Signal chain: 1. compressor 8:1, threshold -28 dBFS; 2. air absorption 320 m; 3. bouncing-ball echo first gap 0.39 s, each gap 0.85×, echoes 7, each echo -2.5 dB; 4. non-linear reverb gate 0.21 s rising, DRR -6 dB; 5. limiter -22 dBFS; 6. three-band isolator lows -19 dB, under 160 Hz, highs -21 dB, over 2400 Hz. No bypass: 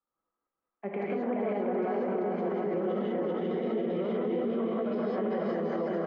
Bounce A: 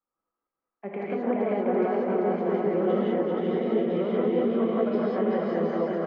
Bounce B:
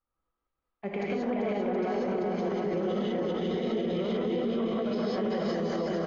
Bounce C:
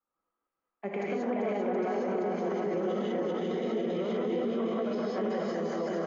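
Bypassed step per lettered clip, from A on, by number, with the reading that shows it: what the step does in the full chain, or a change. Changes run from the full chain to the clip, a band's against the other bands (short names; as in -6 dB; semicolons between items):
5, mean gain reduction 3.5 dB; 6, 125 Hz band +2.5 dB; 2, 2 kHz band +2.5 dB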